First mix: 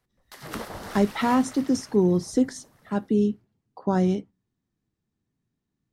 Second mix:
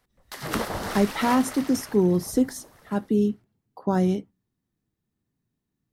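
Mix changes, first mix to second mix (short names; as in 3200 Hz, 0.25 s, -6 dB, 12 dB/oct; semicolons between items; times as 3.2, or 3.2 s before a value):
speech: remove LPF 8300 Hz 24 dB/oct; background +7.0 dB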